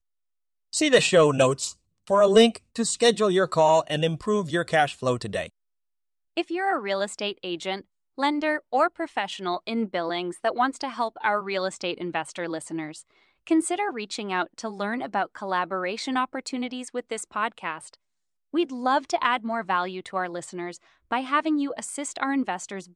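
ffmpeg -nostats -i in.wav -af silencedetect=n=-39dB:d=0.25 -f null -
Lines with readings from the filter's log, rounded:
silence_start: 0.00
silence_end: 0.73 | silence_duration: 0.73
silence_start: 1.72
silence_end: 2.07 | silence_duration: 0.35
silence_start: 5.47
silence_end: 6.37 | silence_duration: 0.90
silence_start: 7.81
silence_end: 8.18 | silence_duration: 0.37
silence_start: 13.01
silence_end: 13.47 | silence_duration: 0.46
silence_start: 17.94
silence_end: 18.54 | silence_duration: 0.60
silence_start: 20.77
silence_end: 21.11 | silence_duration: 0.34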